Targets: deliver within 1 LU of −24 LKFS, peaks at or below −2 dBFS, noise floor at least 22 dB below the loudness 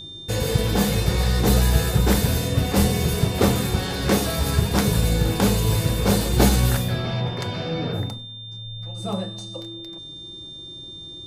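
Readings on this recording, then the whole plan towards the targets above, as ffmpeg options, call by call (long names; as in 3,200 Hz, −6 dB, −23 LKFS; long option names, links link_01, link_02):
interfering tone 3,600 Hz; level of the tone −36 dBFS; integrated loudness −21.5 LKFS; sample peak −3.0 dBFS; target loudness −24.0 LKFS
→ -af "bandreject=frequency=3600:width=30"
-af "volume=-2.5dB"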